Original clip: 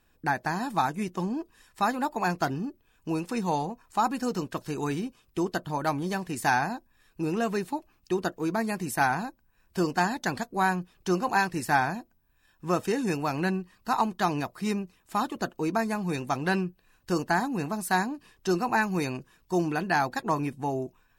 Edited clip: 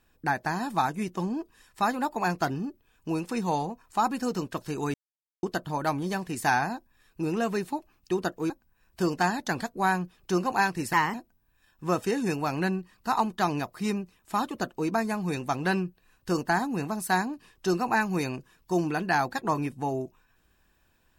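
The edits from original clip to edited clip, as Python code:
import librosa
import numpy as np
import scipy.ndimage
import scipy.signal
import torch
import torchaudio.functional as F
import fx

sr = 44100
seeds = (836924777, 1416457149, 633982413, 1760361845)

y = fx.edit(x, sr, fx.silence(start_s=4.94, length_s=0.49),
    fx.cut(start_s=8.5, length_s=0.77),
    fx.speed_span(start_s=11.7, length_s=0.25, speed=1.19), tone=tone)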